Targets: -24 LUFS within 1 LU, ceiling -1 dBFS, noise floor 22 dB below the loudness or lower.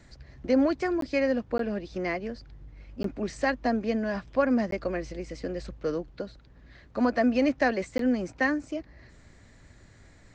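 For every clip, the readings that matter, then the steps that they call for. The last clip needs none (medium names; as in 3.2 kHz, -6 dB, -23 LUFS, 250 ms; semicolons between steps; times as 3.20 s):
dropouts 5; longest dropout 13 ms; loudness -28.5 LUFS; peak level -12.0 dBFS; loudness target -24.0 LUFS
-> interpolate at 1.01/1.58/3.03/4.71/7.98 s, 13 ms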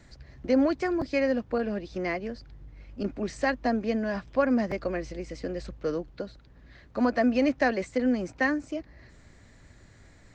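dropouts 0; loudness -28.5 LUFS; peak level -12.0 dBFS; loudness target -24.0 LUFS
-> trim +4.5 dB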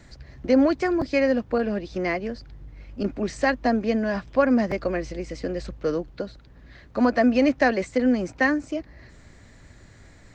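loudness -24.0 LUFS; peak level -7.5 dBFS; noise floor -50 dBFS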